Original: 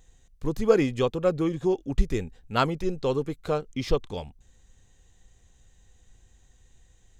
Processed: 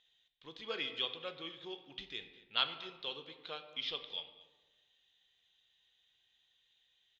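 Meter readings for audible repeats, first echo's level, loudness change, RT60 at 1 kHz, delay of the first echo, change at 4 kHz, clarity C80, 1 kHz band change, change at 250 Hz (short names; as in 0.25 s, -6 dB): 1, -20.0 dB, -12.5 dB, 1.2 s, 0.234 s, +3.5 dB, 12.0 dB, -15.0 dB, -26.0 dB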